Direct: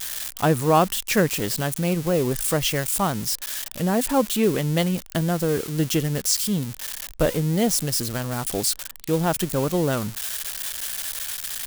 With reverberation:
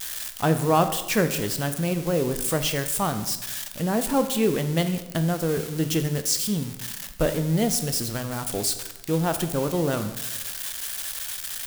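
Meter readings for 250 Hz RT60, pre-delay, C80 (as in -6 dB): 1.2 s, 13 ms, 13.0 dB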